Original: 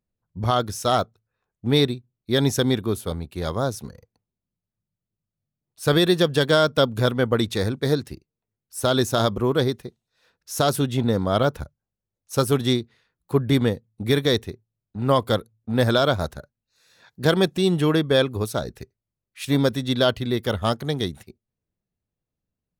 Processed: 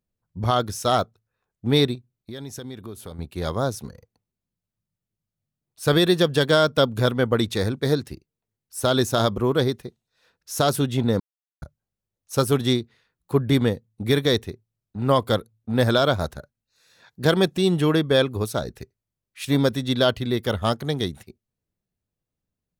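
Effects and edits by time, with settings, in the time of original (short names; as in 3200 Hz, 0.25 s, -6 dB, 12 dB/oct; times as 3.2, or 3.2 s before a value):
1.95–3.19 compressor 4:1, threshold -35 dBFS
11.2–11.62 mute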